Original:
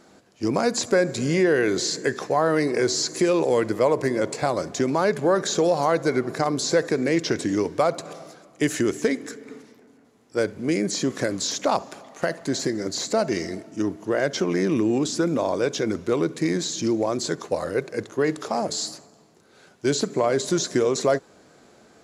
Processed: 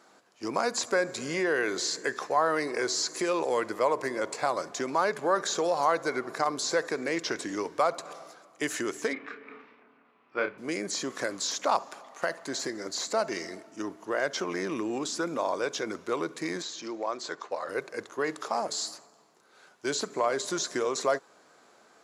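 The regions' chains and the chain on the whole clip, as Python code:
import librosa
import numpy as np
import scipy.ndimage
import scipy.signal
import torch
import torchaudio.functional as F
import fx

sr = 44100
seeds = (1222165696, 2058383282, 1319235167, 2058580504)

y = fx.chain(x, sr, fx.cabinet(low_hz=120.0, low_slope=12, high_hz=3300.0, hz=(130.0, 470.0, 1200.0, 2500.0), db=(6, -3, 6, 9)),
    fx.doubler(ms=30.0, db=-6.5), at=(9.13, 10.58))
y = fx.chain(y, sr, fx.highpass(hz=440.0, slope=6),
    fx.air_absorb(metres=100.0), at=(16.62, 17.69))
y = fx.highpass(y, sr, hz=580.0, slope=6)
y = fx.peak_eq(y, sr, hz=1100.0, db=6.0, octaves=1.0)
y = y * 10.0 ** (-4.5 / 20.0)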